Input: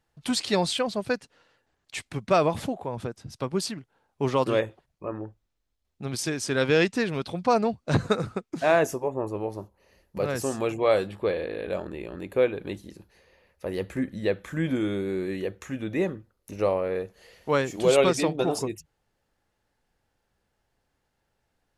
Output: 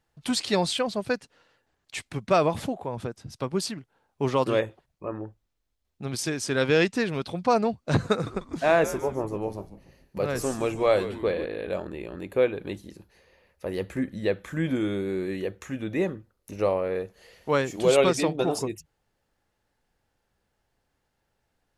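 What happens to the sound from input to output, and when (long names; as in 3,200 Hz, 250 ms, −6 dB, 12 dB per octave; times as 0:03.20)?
0:08.12–0:11.46: echo with shifted repeats 145 ms, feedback 44%, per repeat −120 Hz, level −13.5 dB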